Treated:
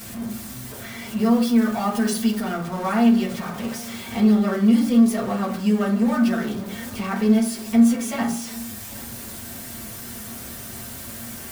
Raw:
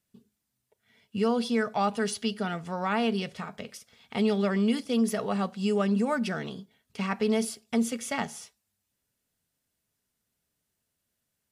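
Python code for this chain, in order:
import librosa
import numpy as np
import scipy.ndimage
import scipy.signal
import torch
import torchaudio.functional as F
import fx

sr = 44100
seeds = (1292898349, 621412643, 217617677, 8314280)

y = x + 0.5 * 10.0 ** (-30.5 / 20.0) * np.sign(x)
y = fx.high_shelf(y, sr, hz=9500.0, db=fx.steps((0.0, 3.0), (1.16, 11.5), (2.41, 5.5)))
y = y + 10.0 ** (-20.5 / 20.0) * np.pad(y, (int(782 * sr / 1000.0), 0))[:len(y)]
y = fx.rev_fdn(y, sr, rt60_s=0.45, lf_ratio=1.35, hf_ratio=0.4, size_ms=26.0, drr_db=-4.5)
y = F.gain(torch.from_numpy(y), -5.0).numpy()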